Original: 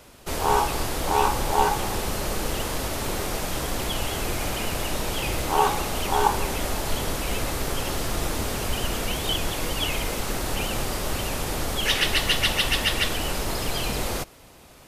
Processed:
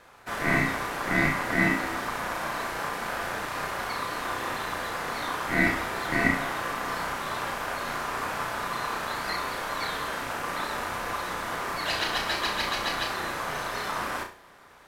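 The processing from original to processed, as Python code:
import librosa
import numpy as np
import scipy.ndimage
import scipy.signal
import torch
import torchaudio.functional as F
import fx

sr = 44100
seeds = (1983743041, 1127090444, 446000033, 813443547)

y = scipy.signal.sosfilt(scipy.signal.butter(4, 50.0, 'highpass', fs=sr, output='sos'), x)
y = fx.peak_eq(y, sr, hz=13000.0, db=-10.5, octaves=2.7)
y = y * np.sin(2.0 * np.pi * 1100.0 * np.arange(len(y)) / sr)
y = fx.room_flutter(y, sr, wall_m=5.7, rt60_s=0.37)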